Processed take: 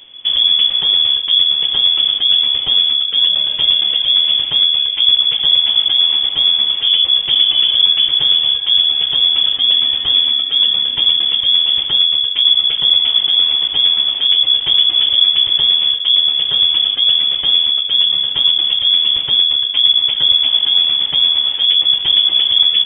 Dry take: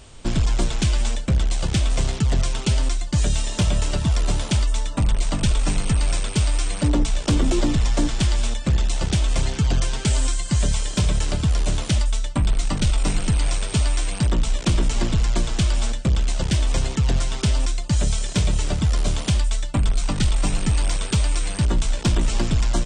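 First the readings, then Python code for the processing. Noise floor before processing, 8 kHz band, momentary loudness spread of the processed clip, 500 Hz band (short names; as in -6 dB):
-31 dBFS, under -40 dB, 2 LU, n/a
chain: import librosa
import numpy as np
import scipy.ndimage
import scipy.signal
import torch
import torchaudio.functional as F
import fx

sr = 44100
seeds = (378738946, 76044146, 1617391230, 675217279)

p1 = fx.low_shelf(x, sr, hz=110.0, db=6.0)
p2 = p1 + fx.echo_single(p1, sr, ms=800, db=-10.5, dry=0)
p3 = fx.freq_invert(p2, sr, carrier_hz=3400)
y = p3 * 10.0 ** (-1.0 / 20.0)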